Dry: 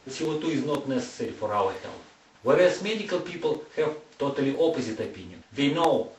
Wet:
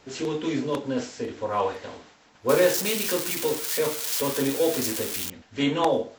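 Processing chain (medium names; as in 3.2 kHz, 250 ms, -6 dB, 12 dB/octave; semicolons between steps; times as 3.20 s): 2.49–5.30 s: zero-crossing glitches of -17.5 dBFS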